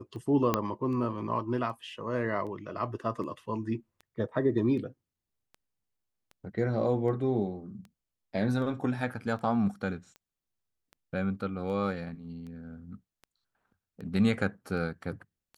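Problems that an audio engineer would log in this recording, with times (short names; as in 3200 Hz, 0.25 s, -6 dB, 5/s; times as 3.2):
tick 78 rpm -34 dBFS
0.54 pop -11 dBFS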